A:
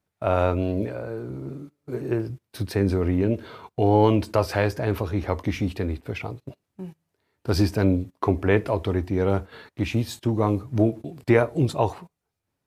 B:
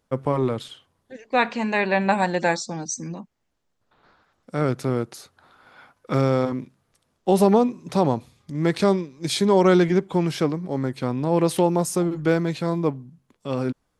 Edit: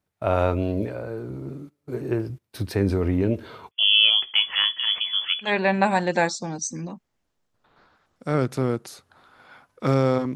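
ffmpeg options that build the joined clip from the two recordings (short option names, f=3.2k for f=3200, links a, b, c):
-filter_complex "[0:a]asettb=1/sr,asplit=3[a][b][c];[a]atrim=end=3.714[d];[b]atrim=start=3.71:end=5.53,asetpts=PTS-STARTPTS,afade=t=in:d=0.004:c=qsin,afade=t=out:st=1.816:d=0.004:c=qsin,lowpass=f=3k:t=q:w=0.5098,lowpass=f=3k:t=q:w=0.6013,lowpass=f=3k:t=q:w=0.9,lowpass=f=3k:t=q:w=2.563,afreqshift=-3500[e];[c]atrim=start=5.526[f];[d][e]acrossfade=d=0.004:c1=hsin:c2=qsin[g];[g][f]acrossfade=d=0.004:c1=qsin:c2=hsin,apad=whole_dur=10.35,atrim=end=10.35,atrim=end=5.53,asetpts=PTS-STARTPTS[h];[1:a]atrim=start=1.68:end=6.62,asetpts=PTS-STARTPTS[i];[h][i]acrossfade=d=0.12:c1=tri:c2=tri"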